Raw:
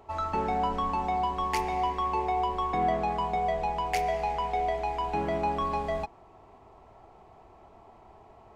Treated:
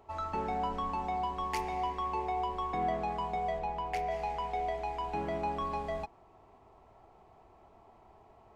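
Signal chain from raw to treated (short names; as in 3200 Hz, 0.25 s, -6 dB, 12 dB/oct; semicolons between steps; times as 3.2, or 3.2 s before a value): 3.58–4.1 high shelf 5600 Hz -> 3700 Hz -10.5 dB; gain -5.5 dB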